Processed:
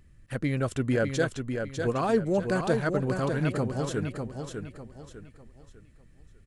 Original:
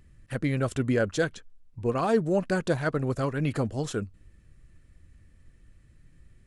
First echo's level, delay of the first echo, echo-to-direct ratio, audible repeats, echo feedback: -6.0 dB, 600 ms, -5.5 dB, 4, 34%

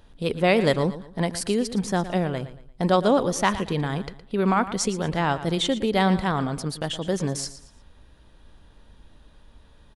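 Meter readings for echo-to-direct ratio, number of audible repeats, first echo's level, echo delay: -13.5 dB, 3, -14.0 dB, 115 ms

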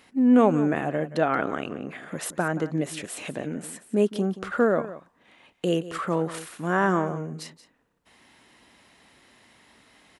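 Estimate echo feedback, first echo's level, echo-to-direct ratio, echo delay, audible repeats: no regular repeats, -15.0 dB, -15.0 dB, 177 ms, 1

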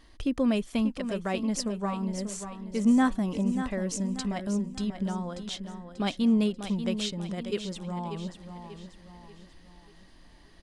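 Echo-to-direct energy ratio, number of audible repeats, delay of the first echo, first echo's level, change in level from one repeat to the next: -8.5 dB, 4, 588 ms, -9.5 dB, -7.5 dB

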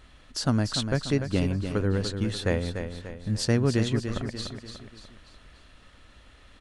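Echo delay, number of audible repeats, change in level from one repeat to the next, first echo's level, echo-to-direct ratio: 293 ms, 4, -6.5 dB, -8.0 dB, -7.0 dB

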